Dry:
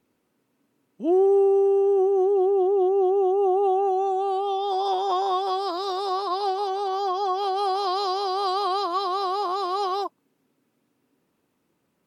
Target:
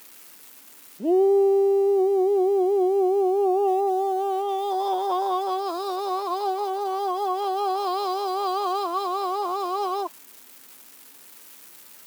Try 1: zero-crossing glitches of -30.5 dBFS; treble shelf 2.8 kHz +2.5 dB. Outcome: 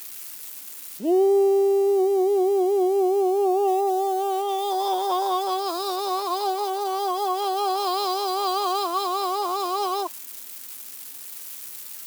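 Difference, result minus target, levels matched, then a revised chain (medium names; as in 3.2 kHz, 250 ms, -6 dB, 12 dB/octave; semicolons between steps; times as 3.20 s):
4 kHz band +6.0 dB
zero-crossing glitches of -30.5 dBFS; treble shelf 2.8 kHz -7.5 dB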